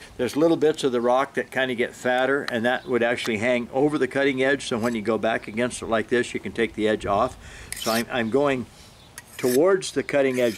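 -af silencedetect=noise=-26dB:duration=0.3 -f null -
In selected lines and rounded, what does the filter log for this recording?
silence_start: 7.32
silence_end: 7.72 | silence_duration: 0.41
silence_start: 8.62
silence_end: 9.18 | silence_duration: 0.56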